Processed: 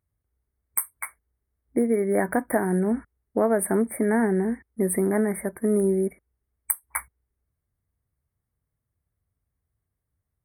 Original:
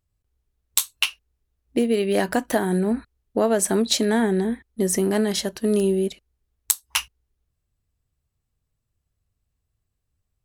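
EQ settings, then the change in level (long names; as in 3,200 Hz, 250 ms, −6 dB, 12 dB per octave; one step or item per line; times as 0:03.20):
high-pass filter 50 Hz
linear-phase brick-wall band-stop 2,300–8,200 Hz
−1.5 dB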